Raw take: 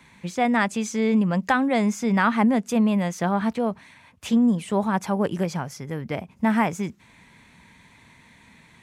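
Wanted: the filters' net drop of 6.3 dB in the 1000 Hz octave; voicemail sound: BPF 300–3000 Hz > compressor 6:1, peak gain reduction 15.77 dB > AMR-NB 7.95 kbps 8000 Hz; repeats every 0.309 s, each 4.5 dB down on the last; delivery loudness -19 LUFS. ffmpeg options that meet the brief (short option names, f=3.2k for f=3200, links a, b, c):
-af "highpass=300,lowpass=3k,equalizer=f=1k:t=o:g=-8.5,aecho=1:1:309|618|927|1236|1545|1854|2163|2472|2781:0.596|0.357|0.214|0.129|0.0772|0.0463|0.0278|0.0167|0.01,acompressor=threshold=-36dB:ratio=6,volume=21dB" -ar 8000 -c:a libopencore_amrnb -b:a 7950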